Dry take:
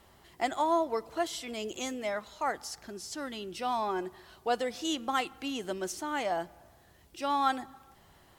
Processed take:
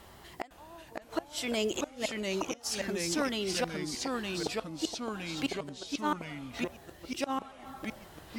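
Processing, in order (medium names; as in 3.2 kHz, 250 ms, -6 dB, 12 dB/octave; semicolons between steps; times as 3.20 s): inverted gate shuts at -26 dBFS, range -31 dB; ever faster or slower copies 508 ms, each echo -2 st, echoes 3; trim +6.5 dB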